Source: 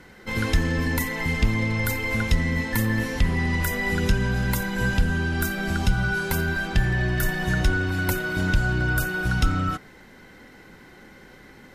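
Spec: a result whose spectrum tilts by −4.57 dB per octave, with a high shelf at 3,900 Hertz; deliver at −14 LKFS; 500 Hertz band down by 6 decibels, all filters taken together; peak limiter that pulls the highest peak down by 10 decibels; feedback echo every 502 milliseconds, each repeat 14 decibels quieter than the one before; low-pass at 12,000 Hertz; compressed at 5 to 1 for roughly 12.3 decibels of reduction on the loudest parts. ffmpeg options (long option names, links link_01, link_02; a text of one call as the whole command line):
ffmpeg -i in.wav -af "lowpass=12000,equalizer=frequency=500:width_type=o:gain=-8.5,highshelf=frequency=3900:gain=5,acompressor=threshold=-29dB:ratio=5,alimiter=level_in=2.5dB:limit=-24dB:level=0:latency=1,volume=-2.5dB,aecho=1:1:502|1004:0.2|0.0399,volume=21dB" out.wav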